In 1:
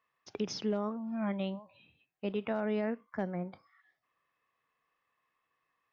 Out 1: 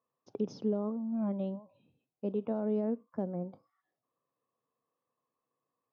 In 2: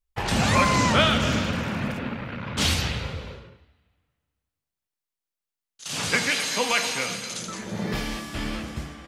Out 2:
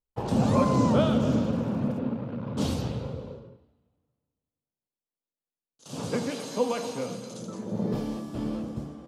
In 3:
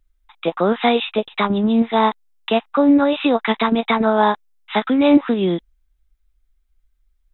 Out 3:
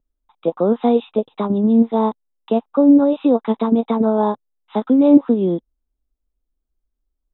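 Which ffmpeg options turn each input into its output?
-af "equalizer=f=125:t=o:w=1:g=11,equalizer=f=250:t=o:w=1:g=12,equalizer=f=500:t=o:w=1:g=12,equalizer=f=1k:t=o:w=1:g=6,equalizer=f=2k:t=o:w=1:g=-10,volume=-13dB"

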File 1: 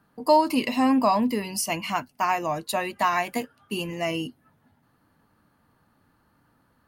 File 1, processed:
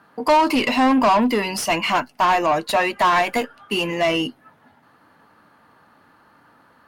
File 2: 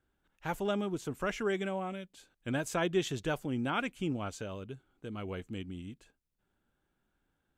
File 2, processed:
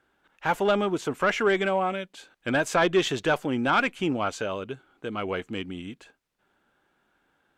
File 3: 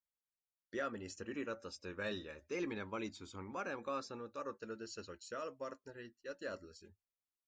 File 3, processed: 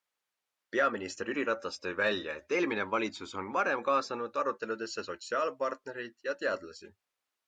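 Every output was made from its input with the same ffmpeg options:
-filter_complex "[0:a]asplit=2[a][b];[b]highpass=f=720:p=1,volume=22dB,asoftclip=type=tanh:threshold=-8dB[c];[a][c]amix=inputs=2:normalize=0,lowpass=f=2.3k:p=1,volume=-6dB" -ar 48000 -c:a libopus -b:a 256k

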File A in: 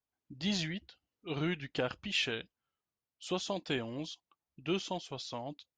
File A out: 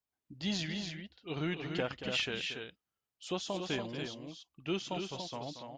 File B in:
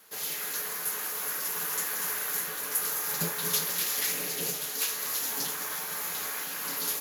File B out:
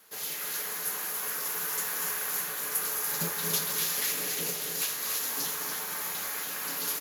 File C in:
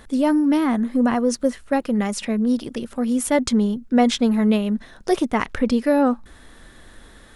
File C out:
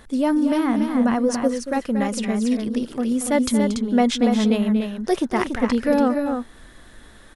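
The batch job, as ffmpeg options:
-af "aecho=1:1:230.3|285.7:0.282|0.501,volume=-1.5dB"

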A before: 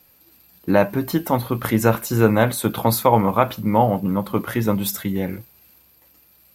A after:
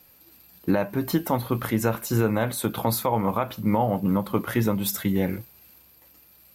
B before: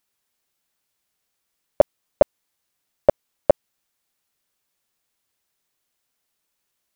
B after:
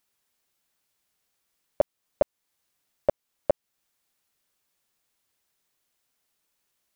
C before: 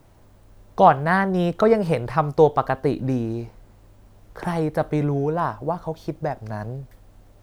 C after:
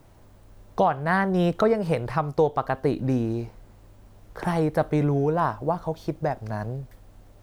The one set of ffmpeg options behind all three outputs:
-af "alimiter=limit=-11dB:level=0:latency=1:release=371"

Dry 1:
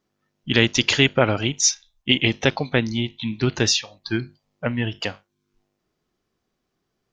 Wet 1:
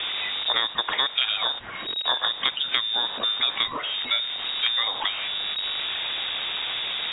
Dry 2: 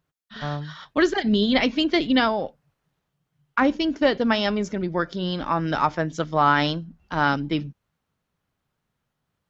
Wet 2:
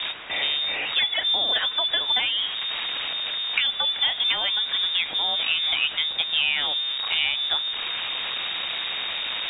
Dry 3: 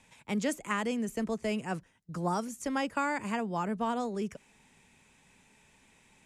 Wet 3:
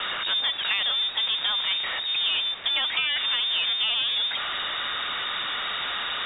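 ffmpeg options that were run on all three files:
-filter_complex "[0:a]aeval=exprs='val(0)+0.5*0.0473*sgn(val(0))':c=same,lowpass=f=3.2k:t=q:w=0.5098,lowpass=f=3.2k:t=q:w=0.6013,lowpass=f=3.2k:t=q:w=0.9,lowpass=f=3.2k:t=q:w=2.563,afreqshift=-3800,acrossover=split=260|2100[a][b][c];[a]acompressor=threshold=-57dB:ratio=4[d];[b]acompressor=threshold=-35dB:ratio=4[e];[c]acompressor=threshold=-30dB:ratio=4[f];[d][e][f]amix=inputs=3:normalize=0,volume=5dB"

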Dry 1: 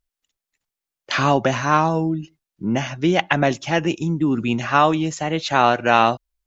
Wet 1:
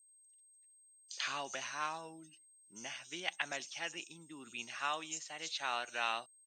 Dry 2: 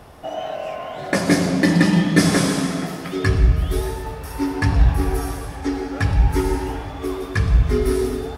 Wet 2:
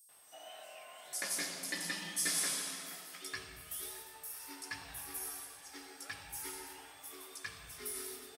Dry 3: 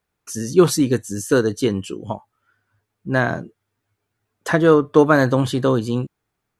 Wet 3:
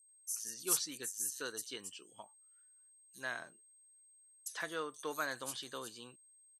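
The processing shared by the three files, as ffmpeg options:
-filter_complex "[0:a]aderivative,aeval=exprs='val(0)+0.00141*sin(2*PI*8400*n/s)':c=same,acrossover=split=5400[a][b];[a]adelay=90[c];[c][b]amix=inputs=2:normalize=0,volume=-5dB"

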